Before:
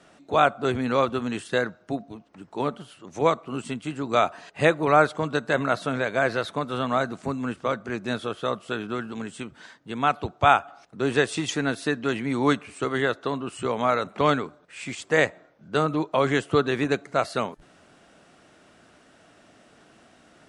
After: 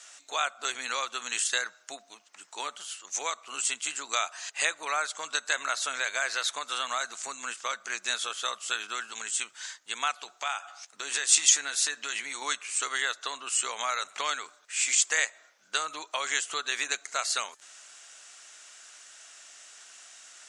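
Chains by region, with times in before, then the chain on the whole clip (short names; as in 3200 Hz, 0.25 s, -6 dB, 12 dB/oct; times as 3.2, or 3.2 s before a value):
10.19–12.42 compressor 3:1, threshold -28 dBFS + doubler 14 ms -12.5 dB
whole clip: compressor 3:1, threshold -25 dBFS; Bessel high-pass 2000 Hz, order 2; bell 6900 Hz +14 dB 0.76 oct; gain +7 dB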